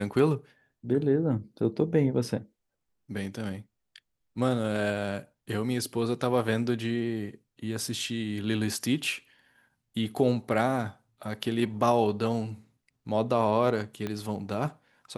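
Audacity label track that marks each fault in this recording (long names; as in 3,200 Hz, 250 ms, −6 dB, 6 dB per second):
14.070000	14.070000	click −19 dBFS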